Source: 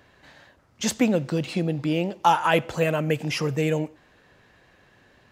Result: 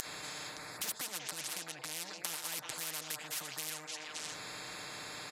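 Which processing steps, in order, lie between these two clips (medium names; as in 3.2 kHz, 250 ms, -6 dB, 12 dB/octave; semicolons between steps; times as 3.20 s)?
local Wiener filter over 15 samples; low-pass 12 kHz 24 dB/octave; treble shelf 7.6 kHz +6 dB; comb 6.6 ms, depth 96%; upward compressor, threshold -32 dBFS; on a send: repeats whose band climbs or falls 189 ms, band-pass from 660 Hz, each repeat 1.4 oct, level -7 dB; on the sum: compression 6:1, threshold -31 dBFS, peak gain reduction 17 dB; differentiator; spectrum-flattening compressor 10:1; trim +7.5 dB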